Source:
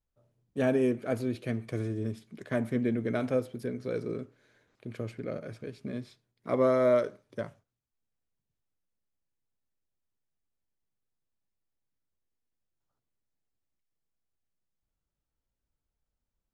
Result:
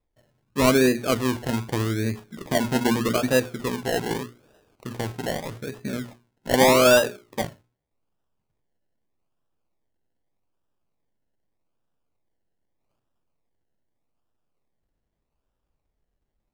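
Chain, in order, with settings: notches 60/120/180/240/300/360/420 Hz; decimation with a swept rate 29×, swing 60% 0.82 Hz; gain +8 dB

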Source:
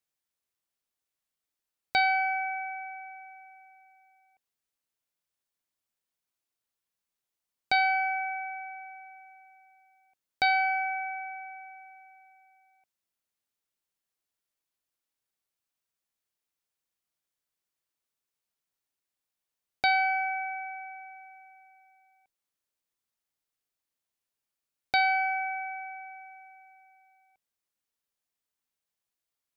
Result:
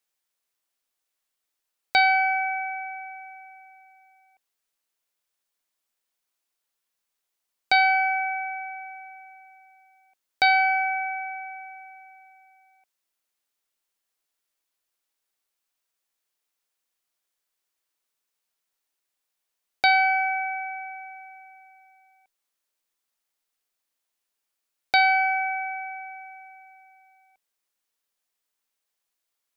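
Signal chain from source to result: bell 96 Hz -12.5 dB 2.5 oct; gain +6 dB

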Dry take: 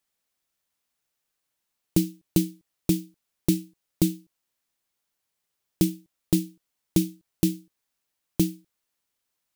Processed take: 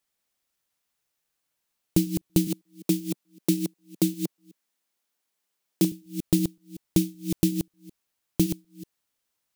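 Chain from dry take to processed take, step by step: reverse delay 0.188 s, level -7 dB; 2.47–5.92 HPF 170 Hz 24 dB/oct

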